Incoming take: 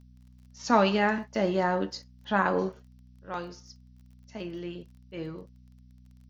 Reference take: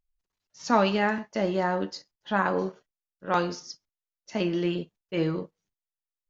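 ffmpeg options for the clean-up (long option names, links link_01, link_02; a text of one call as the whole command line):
ffmpeg -i in.wav -af "adeclick=threshold=4,bandreject=frequency=62.1:width_type=h:width=4,bandreject=frequency=124.2:width_type=h:width=4,bandreject=frequency=186.3:width_type=h:width=4,bandreject=frequency=248.4:width_type=h:width=4,agate=range=-21dB:threshold=-47dB,asetnsamples=nb_out_samples=441:pad=0,asendcmd='2.88 volume volume 10.5dB',volume=0dB" out.wav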